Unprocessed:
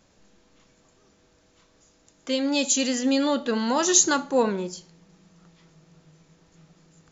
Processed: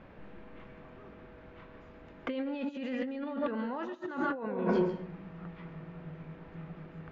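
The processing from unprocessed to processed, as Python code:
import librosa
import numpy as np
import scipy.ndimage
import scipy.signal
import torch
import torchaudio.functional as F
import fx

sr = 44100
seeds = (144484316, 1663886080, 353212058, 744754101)

y = fx.rev_plate(x, sr, seeds[0], rt60_s=0.64, hf_ratio=0.55, predelay_ms=120, drr_db=7.5)
y = fx.over_compress(y, sr, threshold_db=-34.0, ratio=-1.0)
y = scipy.signal.sosfilt(scipy.signal.butter(4, 2400.0, 'lowpass', fs=sr, output='sos'), y)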